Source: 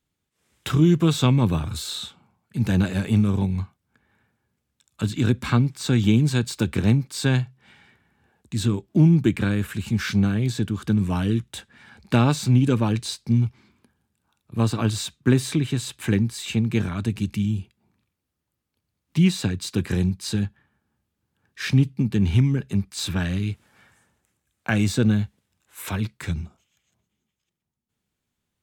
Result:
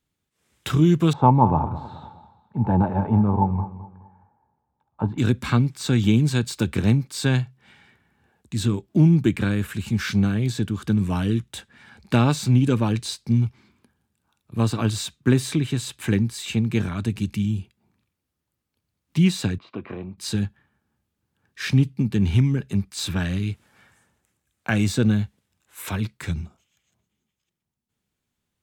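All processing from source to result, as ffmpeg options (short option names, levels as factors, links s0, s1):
-filter_complex "[0:a]asettb=1/sr,asplit=3[s0][s1][s2];[s0]atrim=end=1.134[s3];[s1]atrim=start=1.13:end=5.18,asetpts=PTS-STARTPTS,afade=t=in:d=0.004:c=qsin,afade=t=out:st=4.046:d=0.004:c=qsin,lowpass=f=870:t=q:w=9.5,aecho=1:1:211|422|633:0.188|0.064|0.0218,atrim=end_sample=178605[s4];[s2]atrim=start=5.176[s5];[s3][s4]acrossfade=d=0.004:c1=hsin:c2=qsin[s6];[s6][s5]acrossfade=d=0.004:c1=qsin:c2=hsin,asettb=1/sr,asplit=3[s7][s8][s9];[s7]atrim=end=19.584[s10];[s8]atrim=start=19.58:end=20.18,asetpts=PTS-STARTPTS,afade=t=in:d=0.004:c=qsin,afade=t=out:st=0.596:d=0.004:c=qsin,acompressor=threshold=0.0224:ratio=1.5:attack=3.2:release=140:knee=1:detection=peak,highpass=170,equalizer=f=170:t=q:w=4:g=-8,equalizer=f=650:t=q:w=4:g=7,equalizer=f=1100:t=q:w=4:g=8,equalizer=f=1700:t=q:w=4:g=-10,lowpass=f=2500:w=0.5412,lowpass=f=2500:w=1.3066[s11];[s9]atrim=start=20.176[s12];[s10][s11]acrossfade=d=0.004:c1=hsin:c2=qsin[s13];[s13][s12]acrossfade=d=0.004:c1=qsin:c2=hsin"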